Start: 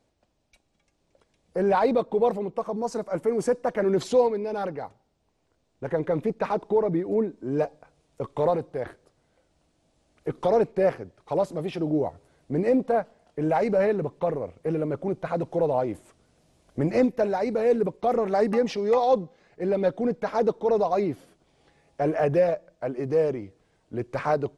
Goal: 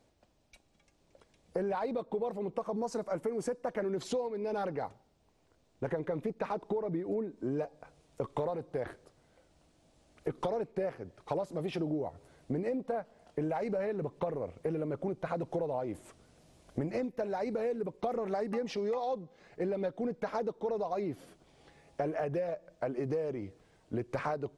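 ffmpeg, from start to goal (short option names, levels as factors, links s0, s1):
-af "acompressor=threshold=0.0251:ratio=12,volume=1.19"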